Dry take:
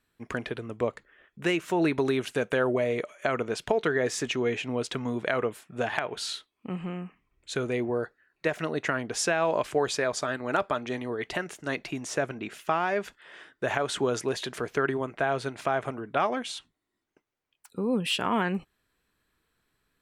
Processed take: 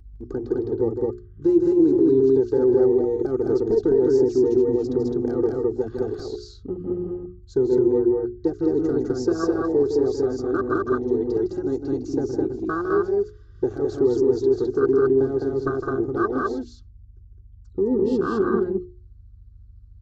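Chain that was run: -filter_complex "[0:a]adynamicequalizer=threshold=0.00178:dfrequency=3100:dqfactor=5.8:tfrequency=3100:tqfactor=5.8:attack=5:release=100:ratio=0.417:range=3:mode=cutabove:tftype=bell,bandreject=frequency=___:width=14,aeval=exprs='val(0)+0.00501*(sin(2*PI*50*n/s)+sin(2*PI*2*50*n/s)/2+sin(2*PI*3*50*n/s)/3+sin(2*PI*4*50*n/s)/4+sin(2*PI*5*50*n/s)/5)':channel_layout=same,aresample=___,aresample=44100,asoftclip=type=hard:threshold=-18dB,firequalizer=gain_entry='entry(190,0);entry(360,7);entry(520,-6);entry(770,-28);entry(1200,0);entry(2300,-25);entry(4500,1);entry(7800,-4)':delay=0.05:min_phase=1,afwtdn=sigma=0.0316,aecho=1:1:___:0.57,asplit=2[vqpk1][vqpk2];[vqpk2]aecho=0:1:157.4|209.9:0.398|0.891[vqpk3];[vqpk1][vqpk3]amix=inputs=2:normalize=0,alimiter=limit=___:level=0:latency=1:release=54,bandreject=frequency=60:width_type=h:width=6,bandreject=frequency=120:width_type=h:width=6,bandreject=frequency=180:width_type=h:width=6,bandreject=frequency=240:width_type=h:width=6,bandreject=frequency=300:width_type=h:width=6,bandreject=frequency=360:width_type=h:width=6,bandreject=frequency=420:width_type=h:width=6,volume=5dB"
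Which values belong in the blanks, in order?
1800, 16000, 2.6, -15dB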